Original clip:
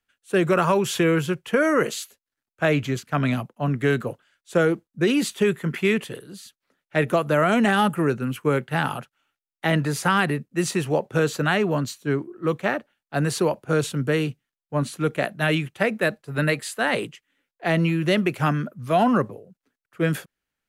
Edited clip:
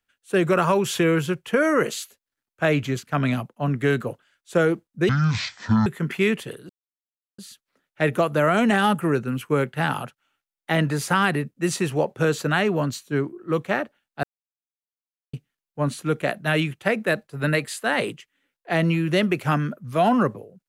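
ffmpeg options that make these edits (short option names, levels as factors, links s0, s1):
-filter_complex "[0:a]asplit=6[s0][s1][s2][s3][s4][s5];[s0]atrim=end=5.094[s6];[s1]atrim=start=5.09:end=5.5,asetpts=PTS-STARTPTS,asetrate=23373,aresample=44100,atrim=end_sample=34115,asetpts=PTS-STARTPTS[s7];[s2]atrim=start=5.496:end=6.33,asetpts=PTS-STARTPTS,afade=t=out:st=0.83:d=0.004:c=hsin,apad=pad_dur=0.69[s8];[s3]atrim=start=6.33:end=13.18,asetpts=PTS-STARTPTS,afade=t=in:d=0.004:c=hsin,afade=t=out:st=6.846:d=0.004:c=hsin[s9];[s4]atrim=start=13.18:end=14.28,asetpts=PTS-STARTPTS,volume=0[s10];[s5]atrim=start=14.28,asetpts=PTS-STARTPTS,afade=t=in:d=0.004:c=hsin[s11];[s6][s7]acrossfade=d=0.004:c1=hsin:c2=hsin[s12];[s8][s9][s10][s11]concat=n=4:v=0:a=1[s13];[s12][s13]acrossfade=d=0.004:c1=hsin:c2=hsin"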